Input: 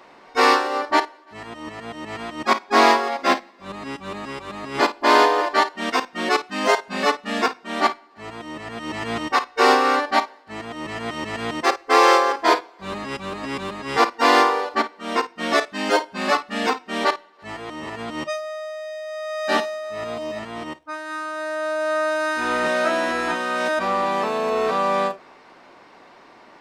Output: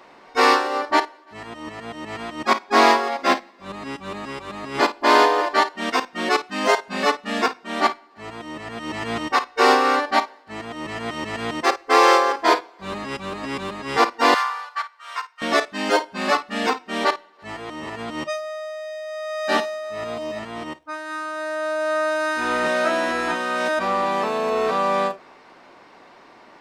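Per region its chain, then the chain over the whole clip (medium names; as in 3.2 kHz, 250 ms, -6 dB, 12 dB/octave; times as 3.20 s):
14.34–15.42 s: ladder high-pass 970 Hz, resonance 40% + treble shelf 5.4 kHz +4 dB
whole clip: none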